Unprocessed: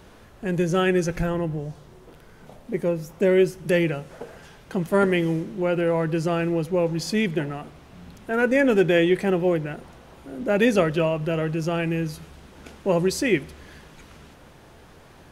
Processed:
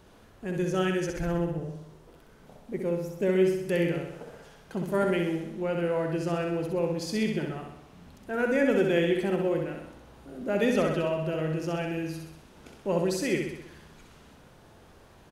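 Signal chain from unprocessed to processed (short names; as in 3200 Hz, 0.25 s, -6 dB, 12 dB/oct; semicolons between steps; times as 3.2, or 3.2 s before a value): bell 2100 Hz -2 dB; on a send: feedback echo 64 ms, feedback 57%, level -4.5 dB; on the sum: gain -7 dB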